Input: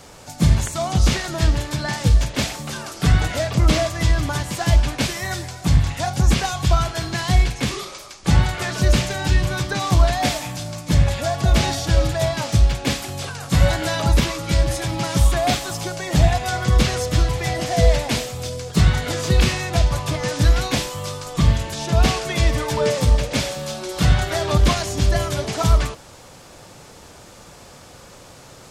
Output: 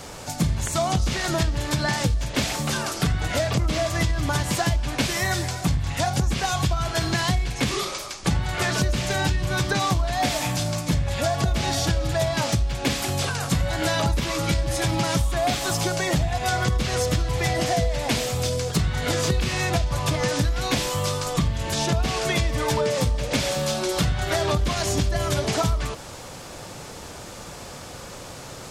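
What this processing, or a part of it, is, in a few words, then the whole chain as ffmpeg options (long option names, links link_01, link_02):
serial compression, peaks first: -af "acompressor=threshold=-21dB:ratio=6,acompressor=threshold=-26dB:ratio=2,volume=5dB"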